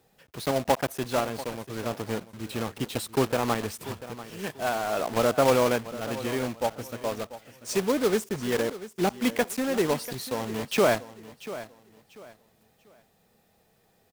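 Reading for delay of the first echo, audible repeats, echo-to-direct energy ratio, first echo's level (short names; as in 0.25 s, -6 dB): 0.69 s, 2, -14.5 dB, -15.0 dB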